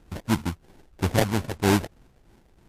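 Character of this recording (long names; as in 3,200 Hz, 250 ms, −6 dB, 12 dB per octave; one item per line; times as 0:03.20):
a buzz of ramps at a fixed pitch in blocks of 8 samples
phaser sweep stages 6, 3.1 Hz, lowest notch 250–3,500 Hz
aliases and images of a low sample rate 1,200 Hz, jitter 20%
MP3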